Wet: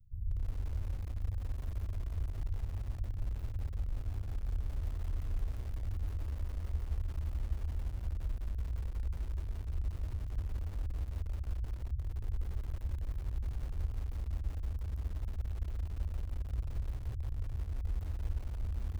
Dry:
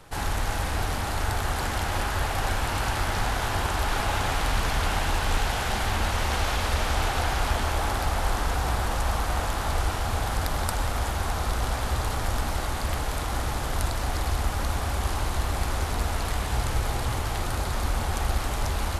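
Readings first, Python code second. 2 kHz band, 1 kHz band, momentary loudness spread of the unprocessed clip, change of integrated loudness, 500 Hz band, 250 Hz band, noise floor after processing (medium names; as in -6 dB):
-30.5 dB, -31.5 dB, 3 LU, -12.0 dB, -24.0 dB, -18.0 dB, -42 dBFS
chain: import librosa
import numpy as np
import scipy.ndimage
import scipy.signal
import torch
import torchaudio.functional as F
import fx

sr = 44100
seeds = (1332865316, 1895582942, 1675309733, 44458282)

y = scipy.signal.sosfilt(scipy.signal.cheby2(4, 80, [570.0, 8300.0], 'bandstop', fs=sr, output='sos'), x)
y = fx.low_shelf(y, sr, hz=230.0, db=-11.0)
y = fx.rider(y, sr, range_db=10, speed_s=0.5)
y = fx.echo_bbd(y, sr, ms=346, stages=2048, feedback_pct=33, wet_db=-23.0)
y = fx.echo_crushed(y, sr, ms=174, feedback_pct=80, bits=7, wet_db=-12)
y = F.gain(torch.from_numpy(y), 2.5).numpy()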